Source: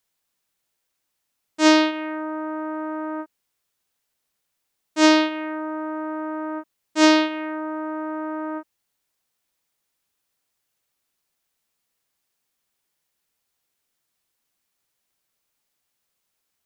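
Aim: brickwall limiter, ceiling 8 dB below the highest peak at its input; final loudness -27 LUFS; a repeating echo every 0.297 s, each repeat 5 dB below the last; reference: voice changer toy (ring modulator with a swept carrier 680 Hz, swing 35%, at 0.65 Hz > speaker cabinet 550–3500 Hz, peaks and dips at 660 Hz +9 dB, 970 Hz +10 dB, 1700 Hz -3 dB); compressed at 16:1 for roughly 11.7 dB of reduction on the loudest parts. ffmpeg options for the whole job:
-af "acompressor=threshold=-22dB:ratio=16,alimiter=limit=-21.5dB:level=0:latency=1,aecho=1:1:297|594|891|1188|1485|1782|2079:0.562|0.315|0.176|0.0988|0.0553|0.031|0.0173,aeval=exprs='val(0)*sin(2*PI*680*n/s+680*0.35/0.65*sin(2*PI*0.65*n/s))':c=same,highpass=550,equalizer=f=660:t=q:w=4:g=9,equalizer=f=970:t=q:w=4:g=10,equalizer=f=1.7k:t=q:w=4:g=-3,lowpass=f=3.5k:w=0.5412,lowpass=f=3.5k:w=1.3066,volume=5.5dB"

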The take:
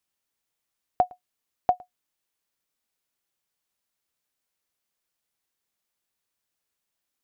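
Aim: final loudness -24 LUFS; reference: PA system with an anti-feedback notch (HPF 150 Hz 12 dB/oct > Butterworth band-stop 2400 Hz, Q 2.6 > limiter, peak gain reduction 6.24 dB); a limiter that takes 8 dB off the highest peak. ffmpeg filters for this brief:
-af "alimiter=limit=-17dB:level=0:latency=1,highpass=150,asuperstop=centerf=2400:order=8:qfactor=2.6,volume=17.5dB,alimiter=limit=-5.5dB:level=0:latency=1"

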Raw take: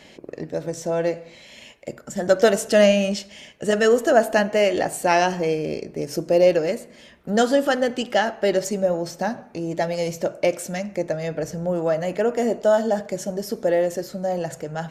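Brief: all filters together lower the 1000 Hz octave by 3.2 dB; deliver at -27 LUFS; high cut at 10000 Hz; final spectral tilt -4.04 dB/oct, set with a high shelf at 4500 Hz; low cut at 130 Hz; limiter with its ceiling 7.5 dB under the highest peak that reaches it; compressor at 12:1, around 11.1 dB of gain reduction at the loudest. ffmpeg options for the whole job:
-af "highpass=130,lowpass=10k,equalizer=f=1k:t=o:g=-5.5,highshelf=f=4.5k:g=7,acompressor=threshold=-23dB:ratio=12,volume=3dB,alimiter=limit=-16dB:level=0:latency=1"

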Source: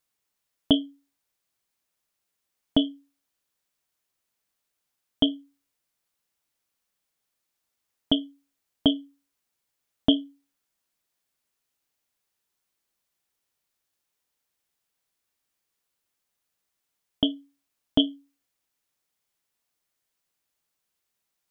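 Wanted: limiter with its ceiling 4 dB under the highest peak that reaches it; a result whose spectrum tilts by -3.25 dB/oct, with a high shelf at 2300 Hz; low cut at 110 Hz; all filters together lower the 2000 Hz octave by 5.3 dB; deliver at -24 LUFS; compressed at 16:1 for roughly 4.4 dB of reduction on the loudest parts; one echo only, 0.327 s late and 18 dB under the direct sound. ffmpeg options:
-af "highpass=110,equalizer=f=2k:t=o:g=-5,highshelf=f=2.3k:g=-4.5,acompressor=threshold=-20dB:ratio=16,alimiter=limit=-14.5dB:level=0:latency=1,aecho=1:1:327:0.126,volume=10dB"

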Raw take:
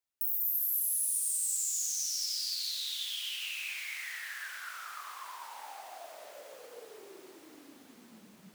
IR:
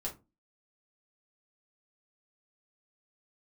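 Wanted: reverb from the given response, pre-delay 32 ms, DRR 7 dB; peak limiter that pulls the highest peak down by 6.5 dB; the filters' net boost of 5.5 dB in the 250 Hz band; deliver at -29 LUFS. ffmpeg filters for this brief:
-filter_complex "[0:a]equalizer=f=250:t=o:g=7,alimiter=level_in=0.5dB:limit=-24dB:level=0:latency=1,volume=-0.5dB,asplit=2[a][b];[1:a]atrim=start_sample=2205,adelay=32[c];[b][c]afir=irnorm=-1:irlink=0,volume=-7.5dB[d];[a][d]amix=inputs=2:normalize=0,volume=4.5dB"

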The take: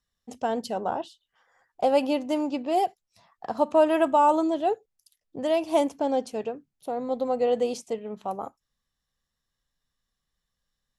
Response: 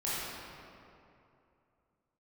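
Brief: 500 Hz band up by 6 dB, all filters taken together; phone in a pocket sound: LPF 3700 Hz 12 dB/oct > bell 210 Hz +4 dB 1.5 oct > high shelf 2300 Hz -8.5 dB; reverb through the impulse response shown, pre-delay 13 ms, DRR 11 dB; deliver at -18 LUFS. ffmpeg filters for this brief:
-filter_complex "[0:a]equalizer=f=500:t=o:g=7,asplit=2[a][b];[1:a]atrim=start_sample=2205,adelay=13[c];[b][c]afir=irnorm=-1:irlink=0,volume=-18dB[d];[a][d]amix=inputs=2:normalize=0,lowpass=3.7k,equalizer=f=210:t=o:w=1.5:g=4,highshelf=f=2.3k:g=-8.5,volume=3dB"

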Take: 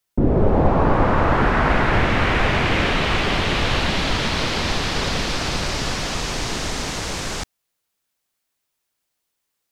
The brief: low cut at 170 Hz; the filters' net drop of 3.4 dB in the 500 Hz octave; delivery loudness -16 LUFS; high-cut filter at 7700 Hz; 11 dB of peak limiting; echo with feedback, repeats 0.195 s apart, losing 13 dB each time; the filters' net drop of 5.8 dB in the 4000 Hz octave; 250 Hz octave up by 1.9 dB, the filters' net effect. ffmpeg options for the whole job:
-af "highpass=170,lowpass=7.7k,equalizer=f=250:t=o:g=5.5,equalizer=f=500:t=o:g=-6,equalizer=f=4k:t=o:g=-7.5,alimiter=limit=-17.5dB:level=0:latency=1,aecho=1:1:195|390|585:0.224|0.0493|0.0108,volume=10dB"

